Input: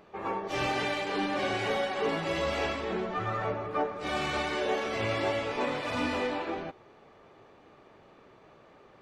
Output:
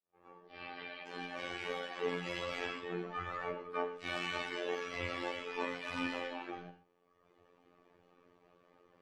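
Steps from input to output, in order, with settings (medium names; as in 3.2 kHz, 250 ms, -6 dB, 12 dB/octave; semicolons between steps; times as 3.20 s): fade-in on the opening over 2.18 s; 0.47–1.06 s: elliptic low-pass 4.7 kHz, stop band 40 dB; reverb removal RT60 1.5 s; dynamic bell 2.3 kHz, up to +6 dB, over -50 dBFS, Q 0.76; flange 1.6 Hz, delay 8.7 ms, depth 4.6 ms, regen +75%; robot voice 87.9 Hz; gated-style reverb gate 150 ms flat, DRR 8.5 dB; trim -2 dB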